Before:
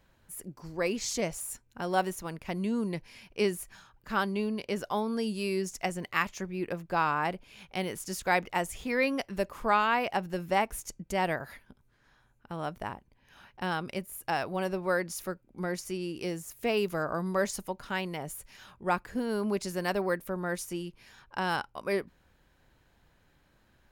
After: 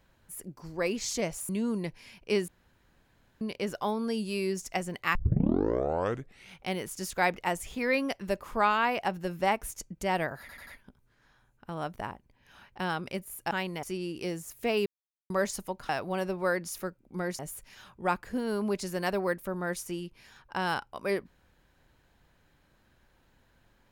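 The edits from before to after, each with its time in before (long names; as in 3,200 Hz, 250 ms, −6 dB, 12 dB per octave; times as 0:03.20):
0:01.49–0:02.58: remove
0:03.57–0:04.50: fill with room tone
0:06.24: tape start 1.46 s
0:11.49: stutter 0.09 s, 4 plays
0:14.33–0:15.83: swap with 0:17.89–0:18.21
0:16.86–0:17.30: silence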